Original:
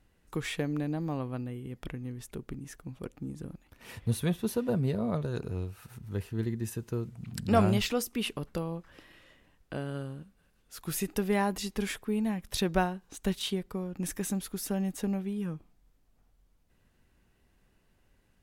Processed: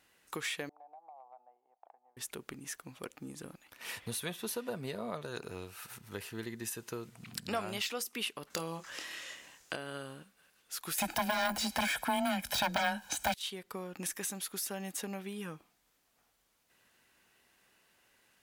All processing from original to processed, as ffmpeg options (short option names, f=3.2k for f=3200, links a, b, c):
-filter_complex "[0:a]asettb=1/sr,asplit=3[a][b][c];[a]atrim=end=0.694[d];[b]atrim=start=0.69:end=2.17,asetpts=PTS-STARTPTS,afade=t=in:d=0.004:c=qsin,afade=t=out:st=1.476:d=0.004:c=qsin,asuperpass=centerf=770:order=4:qfactor=4.1,acompressor=threshold=-51dB:ratio=10:attack=3.2:release=140:knee=1:detection=peak[e];[c]atrim=start=2.166[f];[d][e]acrossfade=d=0.004:c1=hsin:c2=qsin[g];[g][f]acrossfade=d=0.004:c1=qsin:c2=hsin,asettb=1/sr,asplit=3[h][i][j];[h]atrim=end=8.504[k];[i]atrim=start=8.5:end=9.76,asetpts=PTS-STARTPTS,afade=t=in:d=0.004:c=qsin,afade=t=out:st=1.256:d=0.004:c=qsin,acontrast=28,equalizer=f=6.7k:t=o:w=0.84:g=11.5,asplit=2[l][m];[m]adelay=25,volume=-8dB[n];[l][n]amix=inputs=2:normalize=0,atrim=end_sample=55566[o];[j]atrim=start=9.756[p];[k][o]acrossfade=d=0.004:c1=hsin:c2=qsin[q];[q][p]acrossfade=d=0.004:c1=qsin:c2=hsin,asettb=1/sr,asplit=3[r][s][t];[r]atrim=end=10.984[u];[s]atrim=start=10.98:end=13.34,asetpts=PTS-STARTPTS,afade=t=in:d=0.004:c=qsin,afade=t=out:st=2.356:d=0.004:c=qsin,aeval=exprs='0.251*sin(PI/2*6.31*val(0)/0.251)':c=same,aecho=1:1:1.3:0.87,atrim=end_sample=104076,afreqshift=19[v];[t]atrim=start=13.336[w];[u][v]acrossfade=d=0.004:c1=hsin:c2=qsin[x];[x][w]acrossfade=d=0.004:c1=qsin:c2=hsin,deesser=0.55,highpass=f=1.3k:p=1,acompressor=threshold=-46dB:ratio=2.5,volume=8.5dB"